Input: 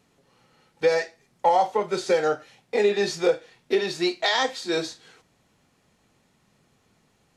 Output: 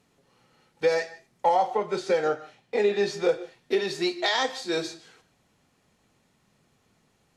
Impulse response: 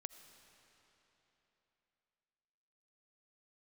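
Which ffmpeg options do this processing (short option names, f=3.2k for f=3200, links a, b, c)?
-filter_complex "[0:a]asettb=1/sr,asplit=3[a][b][c];[a]atrim=end=1.544[d];[b]atrim=start=1.54:end=3.29,asetpts=PTS-STARTPTS,afade=t=in:d=0.004:c=qsin,afade=t=out:st=1.746:d=0.004:c=qsin,highshelf=f=6.2k:g=-8.5[e];[c]atrim=start=3.286[f];[d][e]acrossfade=d=0.004:c1=hsin:c2=qsin[g];[g][f]acrossfade=d=0.004:c1=qsin:c2=hsin[h];[1:a]atrim=start_sample=2205,atrim=end_sample=4410,asetrate=25137,aresample=44100[i];[h][i]afir=irnorm=-1:irlink=0"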